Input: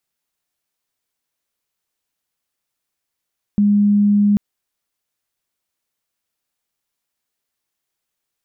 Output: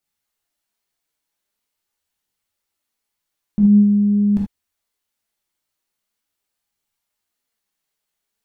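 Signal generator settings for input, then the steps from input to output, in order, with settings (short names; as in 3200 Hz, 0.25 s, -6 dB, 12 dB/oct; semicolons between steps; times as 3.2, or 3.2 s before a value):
tone sine 205 Hz -10.5 dBFS 0.79 s
tracing distortion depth 0.23 ms; flange 0.44 Hz, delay 0.1 ms, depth 6.9 ms, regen +54%; non-linear reverb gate 0.1 s flat, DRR -2.5 dB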